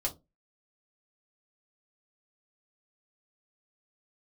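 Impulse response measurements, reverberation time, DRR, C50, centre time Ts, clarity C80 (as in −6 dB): 0.25 s, −1.5 dB, 17.0 dB, 10 ms, 25.5 dB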